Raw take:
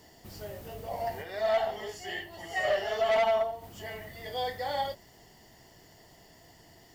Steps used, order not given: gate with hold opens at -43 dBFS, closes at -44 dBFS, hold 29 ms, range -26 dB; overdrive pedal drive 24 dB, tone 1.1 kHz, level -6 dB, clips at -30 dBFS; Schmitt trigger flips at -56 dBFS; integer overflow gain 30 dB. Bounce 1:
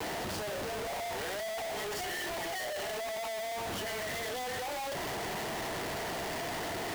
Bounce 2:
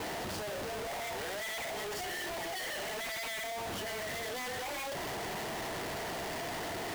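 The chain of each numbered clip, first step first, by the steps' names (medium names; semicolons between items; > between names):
overdrive pedal > gate with hold > Schmitt trigger > integer overflow; overdrive pedal > integer overflow > Schmitt trigger > gate with hold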